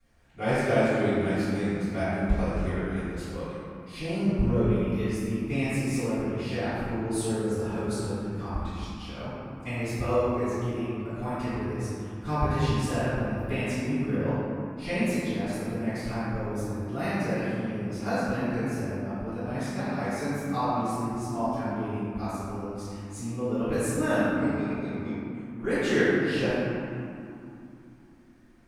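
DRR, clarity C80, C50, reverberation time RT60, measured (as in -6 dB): -19.0 dB, -3.5 dB, -6.0 dB, 2.9 s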